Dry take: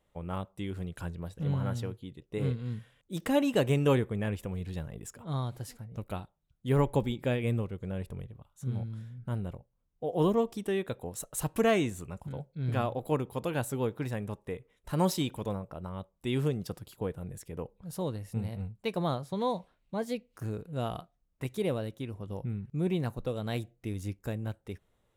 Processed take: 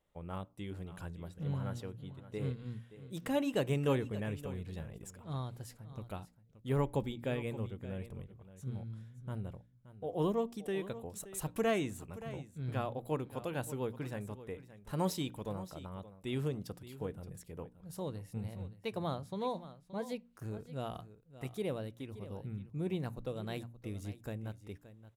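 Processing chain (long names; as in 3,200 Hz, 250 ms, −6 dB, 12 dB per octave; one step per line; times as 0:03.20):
hum removal 58.96 Hz, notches 5
on a send: single-tap delay 574 ms −15 dB
on the sum: level −6 dB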